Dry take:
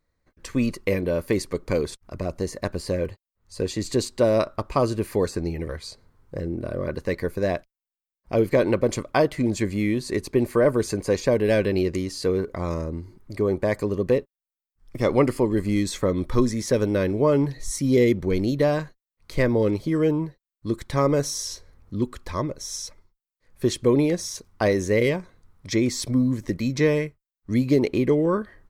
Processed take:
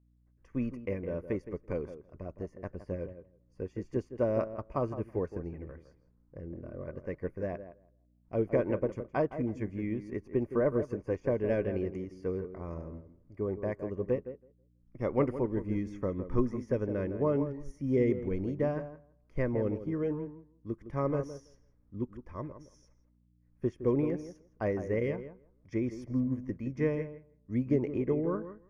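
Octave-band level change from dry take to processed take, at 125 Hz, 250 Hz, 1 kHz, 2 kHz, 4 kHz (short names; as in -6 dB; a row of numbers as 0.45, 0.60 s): -9.0 dB, -9.5 dB, -11.0 dB, -14.0 dB, under -25 dB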